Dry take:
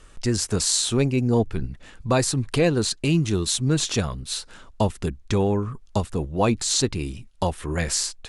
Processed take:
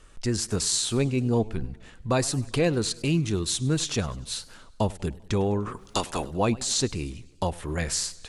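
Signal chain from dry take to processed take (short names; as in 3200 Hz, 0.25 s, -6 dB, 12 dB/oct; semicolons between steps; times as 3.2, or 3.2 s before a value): 5.65–6.3 spectral limiter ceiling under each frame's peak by 25 dB; warbling echo 99 ms, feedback 56%, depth 166 cents, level -21 dB; gain -3.5 dB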